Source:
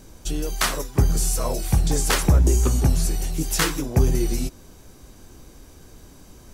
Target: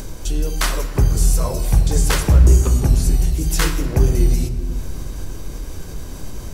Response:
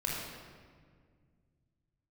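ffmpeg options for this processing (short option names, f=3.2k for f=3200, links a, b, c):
-filter_complex "[0:a]acompressor=mode=upward:threshold=-23dB:ratio=2.5,asplit=2[a][b];[1:a]atrim=start_sample=2205,lowshelf=f=120:g=9.5[c];[b][c]afir=irnorm=-1:irlink=0,volume=-11dB[d];[a][d]amix=inputs=2:normalize=0,volume=-1.5dB"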